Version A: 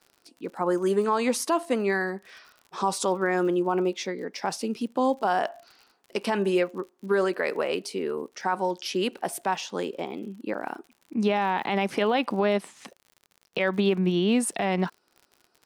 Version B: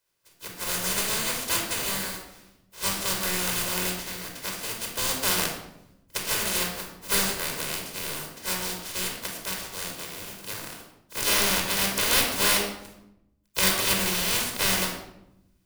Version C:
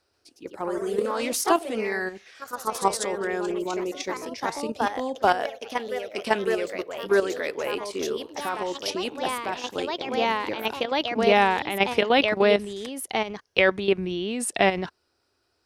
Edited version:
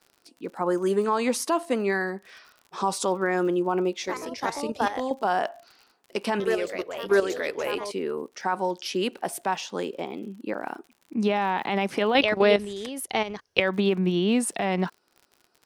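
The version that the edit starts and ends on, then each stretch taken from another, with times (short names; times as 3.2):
A
4.04–5.11 from C
6.4–7.92 from C
12.15–13.6 from C
not used: B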